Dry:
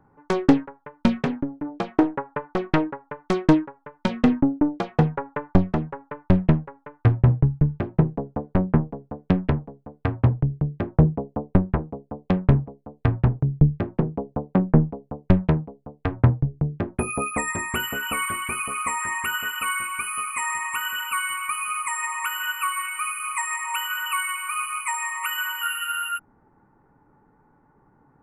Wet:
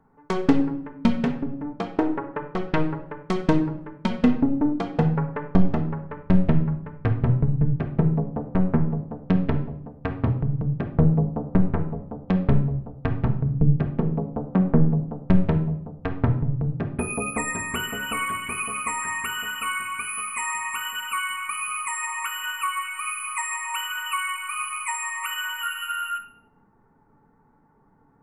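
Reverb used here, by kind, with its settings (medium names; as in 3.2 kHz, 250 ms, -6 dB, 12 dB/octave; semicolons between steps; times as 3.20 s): simulated room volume 2100 m³, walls furnished, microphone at 1.6 m; trim -3 dB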